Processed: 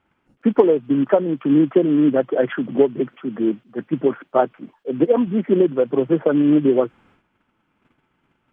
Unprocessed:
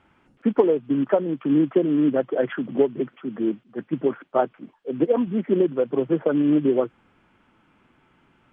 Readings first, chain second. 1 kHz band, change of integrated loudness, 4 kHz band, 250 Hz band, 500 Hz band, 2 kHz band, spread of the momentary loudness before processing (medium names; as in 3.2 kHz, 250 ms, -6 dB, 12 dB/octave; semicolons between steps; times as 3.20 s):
+4.0 dB, +4.0 dB, no reading, +4.0 dB, +4.0 dB, +4.0 dB, 9 LU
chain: gate -58 dBFS, range -12 dB; trim +4 dB